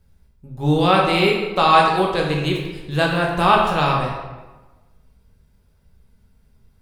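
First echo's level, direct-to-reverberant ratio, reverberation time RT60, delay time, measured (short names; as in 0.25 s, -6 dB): none, -2.0 dB, 1.2 s, none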